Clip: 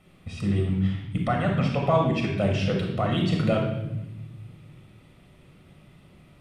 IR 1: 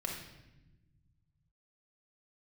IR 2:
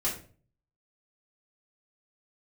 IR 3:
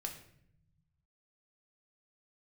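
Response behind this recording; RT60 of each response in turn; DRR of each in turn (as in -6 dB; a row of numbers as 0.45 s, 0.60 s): 1; 1.0 s, 0.40 s, 0.70 s; 0.0 dB, -8.0 dB, 2.0 dB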